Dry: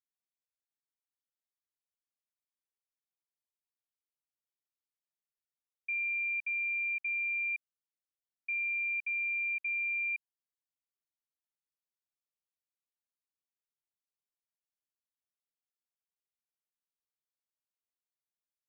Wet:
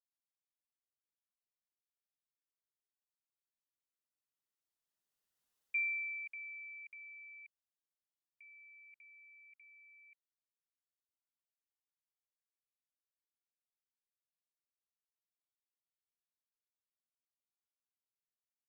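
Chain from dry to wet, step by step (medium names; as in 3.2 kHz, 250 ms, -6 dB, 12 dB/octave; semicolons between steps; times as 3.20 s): Doppler pass-by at 5.59 s, 9 m/s, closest 2.8 m; band-stop 2.3 kHz, Q 9.7; trim +10 dB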